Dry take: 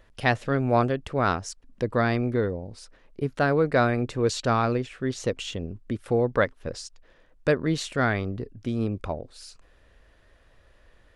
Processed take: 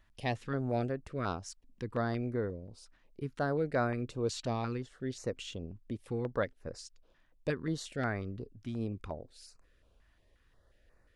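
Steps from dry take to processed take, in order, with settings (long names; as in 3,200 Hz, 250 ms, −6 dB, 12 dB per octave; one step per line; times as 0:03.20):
notch on a step sequencer 5.6 Hz 480–3,200 Hz
level −9 dB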